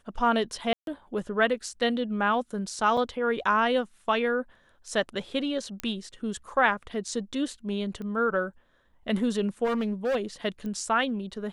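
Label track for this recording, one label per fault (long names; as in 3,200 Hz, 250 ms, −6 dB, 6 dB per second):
0.730000	0.870000	drop-out 142 ms
2.970000	2.970000	drop-out 3.8 ms
5.800000	5.800000	click −16 dBFS
8.020000	8.020000	click −28 dBFS
9.640000	10.160000	clipping −23.5 dBFS
10.660000	10.660000	click −26 dBFS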